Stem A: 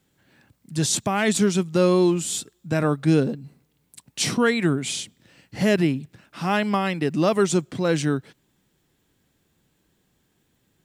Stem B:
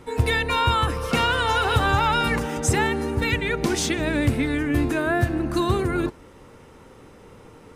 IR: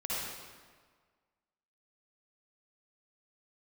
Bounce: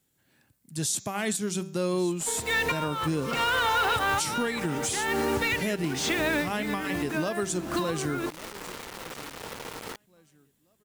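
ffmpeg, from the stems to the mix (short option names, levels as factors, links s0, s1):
-filter_complex "[0:a]equalizer=f=12000:t=o:w=1.4:g=12,bandreject=f=192.3:t=h:w=4,bandreject=f=384.6:t=h:w=4,bandreject=f=576.9:t=h:w=4,bandreject=f=769.2:t=h:w=4,bandreject=f=961.5:t=h:w=4,bandreject=f=1153.8:t=h:w=4,bandreject=f=1346.1:t=h:w=4,bandreject=f=1538.4:t=h:w=4,bandreject=f=1730.7:t=h:w=4,bandreject=f=1923:t=h:w=4,bandreject=f=2115.3:t=h:w=4,bandreject=f=2307.6:t=h:w=4,bandreject=f=2499.9:t=h:w=4,bandreject=f=2692.2:t=h:w=4,bandreject=f=2884.5:t=h:w=4,bandreject=f=3076.8:t=h:w=4,bandreject=f=3269.1:t=h:w=4,bandreject=f=3461.4:t=h:w=4,bandreject=f=3653.7:t=h:w=4,bandreject=f=3846:t=h:w=4,bandreject=f=4038.3:t=h:w=4,bandreject=f=4230.6:t=h:w=4,bandreject=f=4422.9:t=h:w=4,bandreject=f=4615.2:t=h:w=4,bandreject=f=4807.5:t=h:w=4,bandreject=f=4999.8:t=h:w=4,bandreject=f=5192.1:t=h:w=4,bandreject=f=5384.4:t=h:w=4,bandreject=f=5576.7:t=h:w=4,bandreject=f=5769:t=h:w=4,bandreject=f=5961.3:t=h:w=4,bandreject=f=6153.6:t=h:w=4,bandreject=f=6345.9:t=h:w=4,bandreject=f=6538.2:t=h:w=4,bandreject=f=6730.5:t=h:w=4,bandreject=f=6922.8:t=h:w=4,bandreject=f=7115.1:t=h:w=4,bandreject=f=7307.4:t=h:w=4,volume=0.376,asplit=3[s0][s1][s2];[s1]volume=0.0891[s3];[1:a]acompressor=threshold=0.0562:ratio=16,asplit=2[s4][s5];[s5]highpass=f=720:p=1,volume=7.94,asoftclip=type=tanh:threshold=0.266[s6];[s4][s6]amix=inputs=2:normalize=0,lowpass=f=4100:p=1,volume=0.501,acrusher=bits=5:mix=0:aa=0.000001,adelay=2200,volume=0.944[s7];[s2]apad=whole_len=439155[s8];[s7][s8]sidechaincompress=threshold=0.0178:ratio=8:attack=5:release=264[s9];[s3]aecho=0:1:1143|2286|3429|4572:1|0.31|0.0961|0.0298[s10];[s0][s9][s10]amix=inputs=3:normalize=0,alimiter=limit=0.119:level=0:latency=1:release=143"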